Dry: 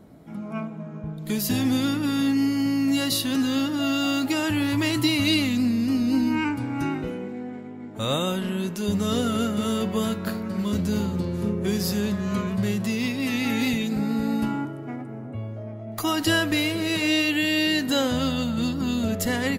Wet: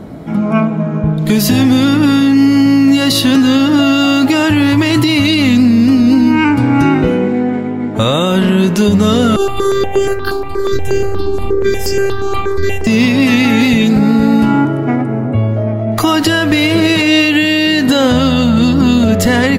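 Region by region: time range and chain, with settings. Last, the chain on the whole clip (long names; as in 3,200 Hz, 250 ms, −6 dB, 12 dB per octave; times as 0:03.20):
0:09.36–0:12.87: phases set to zero 395 Hz + step-sequenced phaser 8.4 Hz 550–3,800 Hz
whole clip: high-shelf EQ 6,800 Hz −10.5 dB; downward compressor, threshold −26 dBFS; boost into a limiter +21 dB; level −1 dB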